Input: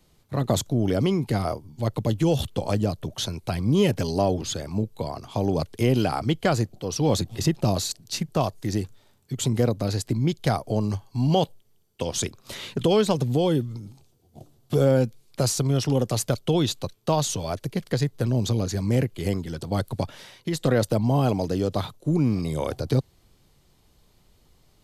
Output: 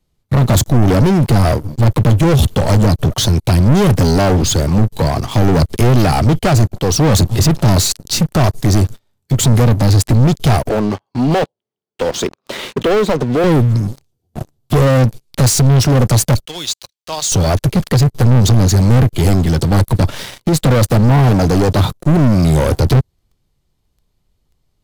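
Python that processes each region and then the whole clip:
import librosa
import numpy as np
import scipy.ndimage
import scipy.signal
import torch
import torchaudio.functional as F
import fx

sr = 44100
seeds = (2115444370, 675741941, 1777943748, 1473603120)

y = fx.chain(x, sr, fx.highpass(hz=320.0, slope=12),
    fx.spacing_loss(db_at_10k=22), at=(10.69, 13.44))
y = fx.chain(y, sr, fx.lowpass(hz=6200.0, slope=12),
    fx.differentiator(),
    fx.band_widen(depth_pct=40), at=(16.45, 17.32))
y = fx.dynamic_eq(y, sr, hz=2500.0, q=0.77, threshold_db=-42.0, ratio=4.0, max_db=-5)
y = fx.leveller(y, sr, passes=5)
y = fx.low_shelf(y, sr, hz=140.0, db=8.0)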